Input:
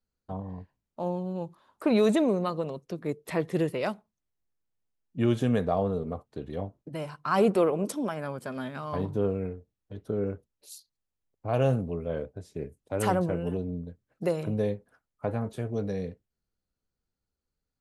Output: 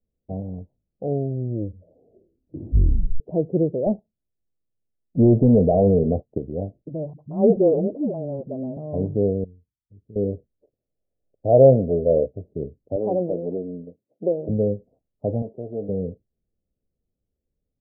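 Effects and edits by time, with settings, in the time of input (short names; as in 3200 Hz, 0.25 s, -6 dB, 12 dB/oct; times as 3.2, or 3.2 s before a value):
0.6 tape stop 2.60 s
3.86–6.38 sample leveller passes 2
7.13–8.77 dispersion highs, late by 65 ms, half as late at 330 Hz
9.44–10.16 passive tone stack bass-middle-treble 6-0-2
10.73–12.26 bell 580 Hz +9.5 dB 1.4 oct
12.96–14.49 HPF 270 Hz
15.42–15.89 RIAA curve recording
whole clip: steep low-pass 670 Hz 48 dB/oct; gain +6.5 dB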